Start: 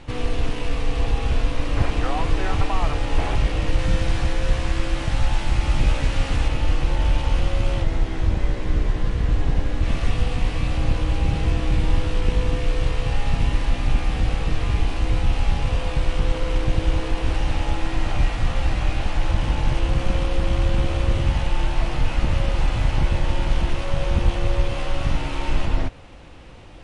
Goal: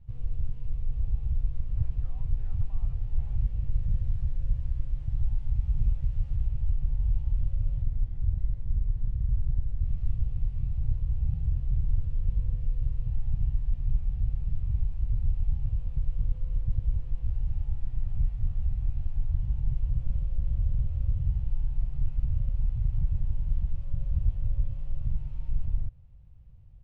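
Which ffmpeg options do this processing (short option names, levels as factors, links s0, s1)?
-af "firequalizer=gain_entry='entry(120,0);entry(300,-29);entry(470,-25);entry(1500,-30)':delay=0.05:min_phase=1,volume=0.473"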